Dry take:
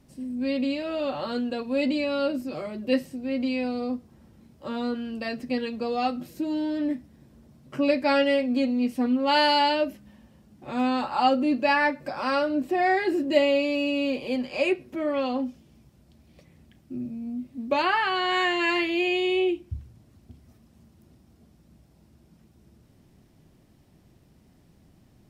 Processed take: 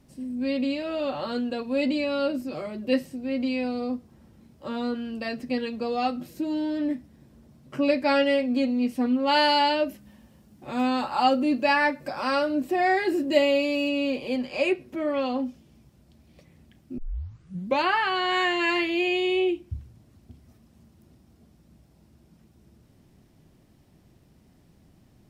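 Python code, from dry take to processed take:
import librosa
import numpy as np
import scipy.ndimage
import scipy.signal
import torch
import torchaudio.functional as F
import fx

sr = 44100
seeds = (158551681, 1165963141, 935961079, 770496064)

y = fx.high_shelf(x, sr, hz=7000.0, db=7.0, at=(9.89, 13.89))
y = fx.edit(y, sr, fx.tape_start(start_s=16.98, length_s=0.79), tone=tone)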